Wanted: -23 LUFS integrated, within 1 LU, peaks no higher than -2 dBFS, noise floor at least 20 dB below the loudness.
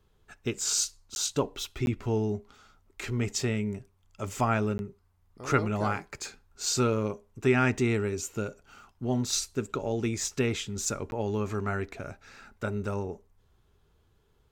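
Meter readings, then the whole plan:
dropouts 4; longest dropout 11 ms; loudness -30.0 LUFS; peak level -11.0 dBFS; loudness target -23.0 LUFS
-> interpolate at 1.15/1.86/4.78/11.11 s, 11 ms; trim +7 dB

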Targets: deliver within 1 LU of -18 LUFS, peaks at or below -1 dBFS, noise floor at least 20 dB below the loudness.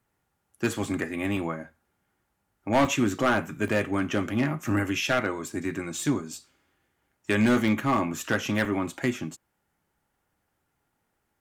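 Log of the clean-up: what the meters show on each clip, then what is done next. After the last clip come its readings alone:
clipped samples 0.5%; clipping level -16.0 dBFS; dropouts 8; longest dropout 2.1 ms; loudness -27.0 LUFS; peak level -16.0 dBFS; loudness target -18.0 LUFS
-> clip repair -16 dBFS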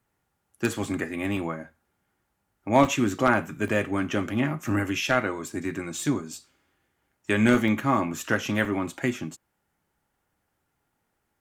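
clipped samples 0.0%; dropouts 8; longest dropout 2.1 ms
-> interpolate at 0.84/1.37/2.85/3.68/4.68/6.33/7.68/8.65 s, 2.1 ms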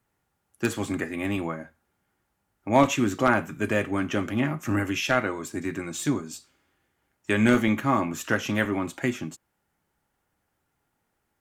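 dropouts 0; loudness -26.0 LUFS; peak level -7.0 dBFS; loudness target -18.0 LUFS
-> trim +8 dB; peak limiter -1 dBFS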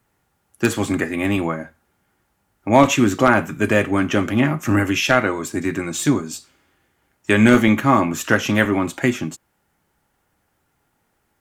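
loudness -18.5 LUFS; peak level -1.0 dBFS; noise floor -69 dBFS

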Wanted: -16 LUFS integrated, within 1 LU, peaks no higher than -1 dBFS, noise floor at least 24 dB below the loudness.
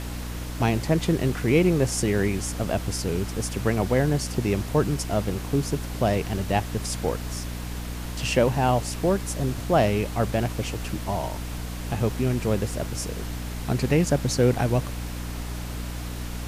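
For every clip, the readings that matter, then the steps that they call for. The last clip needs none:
hum 60 Hz; highest harmonic 300 Hz; hum level -30 dBFS; noise floor -33 dBFS; noise floor target -50 dBFS; loudness -25.5 LUFS; peak level -7.5 dBFS; loudness target -16.0 LUFS
-> hum notches 60/120/180/240/300 Hz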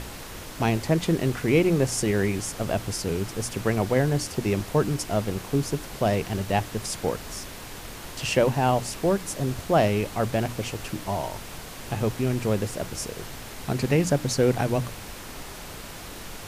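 hum not found; noise floor -40 dBFS; noise floor target -50 dBFS
-> noise print and reduce 10 dB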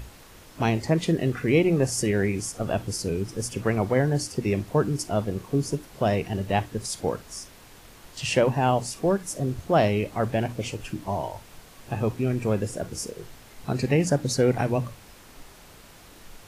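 noise floor -50 dBFS; loudness -26.0 LUFS; peak level -7.5 dBFS; loudness target -16.0 LUFS
-> trim +10 dB; peak limiter -1 dBFS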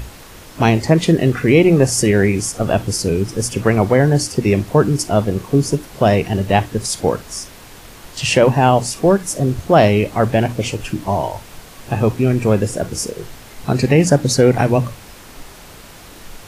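loudness -16.0 LUFS; peak level -1.0 dBFS; noise floor -40 dBFS

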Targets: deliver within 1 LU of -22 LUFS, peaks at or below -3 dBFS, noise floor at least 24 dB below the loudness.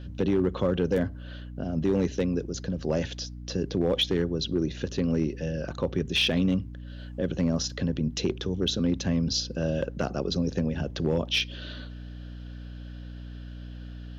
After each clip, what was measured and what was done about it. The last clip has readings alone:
clipped samples 0.4%; clipping level -17.0 dBFS; hum 60 Hz; highest harmonic 300 Hz; hum level -38 dBFS; loudness -28.0 LUFS; peak level -17.0 dBFS; loudness target -22.0 LUFS
-> clip repair -17 dBFS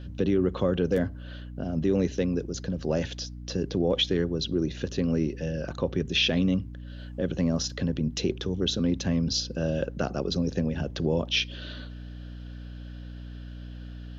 clipped samples 0.0%; hum 60 Hz; highest harmonic 300 Hz; hum level -38 dBFS
-> hum notches 60/120/180/240/300 Hz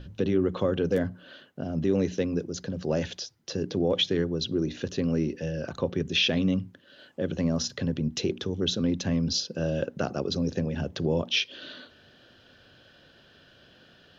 hum not found; loudness -28.5 LUFS; peak level -13.5 dBFS; loudness target -22.0 LUFS
-> trim +6.5 dB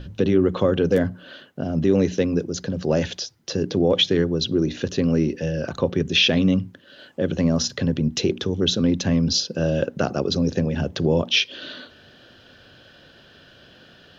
loudness -22.0 LUFS; peak level -7.0 dBFS; noise floor -51 dBFS

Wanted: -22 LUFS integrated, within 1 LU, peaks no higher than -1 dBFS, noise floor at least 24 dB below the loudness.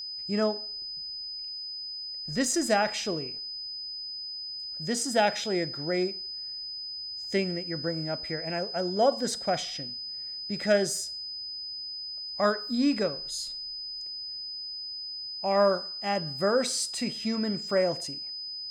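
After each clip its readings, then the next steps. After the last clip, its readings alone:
steady tone 5 kHz; tone level -35 dBFS; loudness -29.5 LUFS; peak level -11.5 dBFS; loudness target -22.0 LUFS
-> band-stop 5 kHz, Q 30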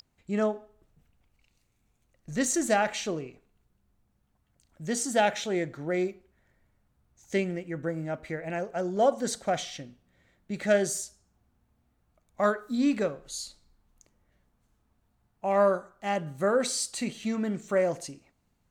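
steady tone not found; loudness -29.0 LUFS; peak level -12.0 dBFS; loudness target -22.0 LUFS
-> trim +7 dB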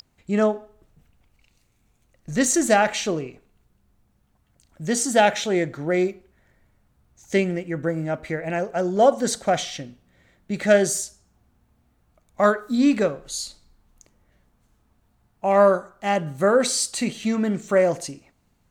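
loudness -22.0 LUFS; peak level -5.0 dBFS; noise floor -66 dBFS

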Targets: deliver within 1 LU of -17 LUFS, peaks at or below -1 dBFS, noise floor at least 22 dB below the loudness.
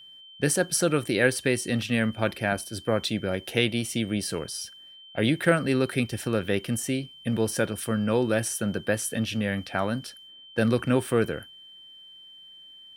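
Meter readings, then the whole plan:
steady tone 3.1 kHz; tone level -46 dBFS; loudness -26.5 LUFS; peak level -6.5 dBFS; loudness target -17.0 LUFS
-> band-stop 3.1 kHz, Q 30; trim +9.5 dB; peak limiter -1 dBFS

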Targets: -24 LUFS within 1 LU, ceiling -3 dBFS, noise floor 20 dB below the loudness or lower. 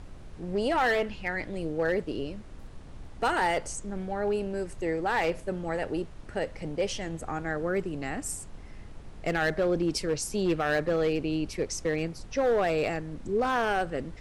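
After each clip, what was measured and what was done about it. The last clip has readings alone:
clipped samples 1.1%; clipping level -20.0 dBFS; noise floor -45 dBFS; noise floor target -50 dBFS; loudness -29.5 LUFS; peak level -20.0 dBFS; loudness target -24.0 LUFS
-> clip repair -20 dBFS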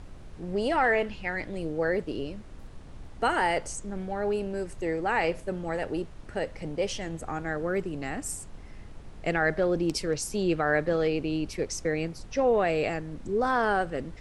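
clipped samples 0.0%; noise floor -45 dBFS; noise floor target -49 dBFS
-> noise print and reduce 6 dB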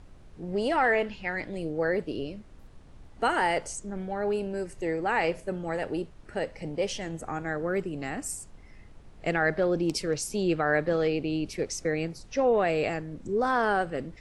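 noise floor -50 dBFS; loudness -29.0 LUFS; peak level -13.5 dBFS; loudness target -24.0 LUFS
-> trim +5 dB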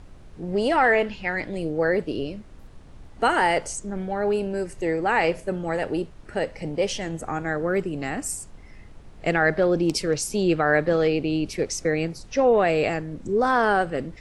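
loudness -24.0 LUFS; peak level -8.5 dBFS; noise floor -45 dBFS

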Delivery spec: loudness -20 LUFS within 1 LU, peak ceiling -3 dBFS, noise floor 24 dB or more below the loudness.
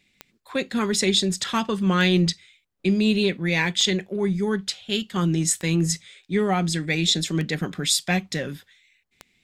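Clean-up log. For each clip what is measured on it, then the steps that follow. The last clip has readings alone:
clicks found 6; loudness -23.0 LUFS; peak level -7.5 dBFS; loudness target -20.0 LUFS
-> de-click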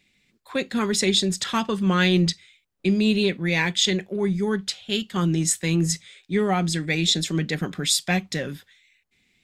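clicks found 0; loudness -23.0 LUFS; peak level -7.5 dBFS; loudness target -20.0 LUFS
-> trim +3 dB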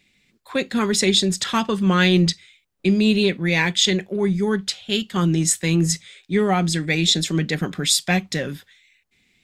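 loudness -20.0 LUFS; peak level -4.5 dBFS; noise floor -64 dBFS

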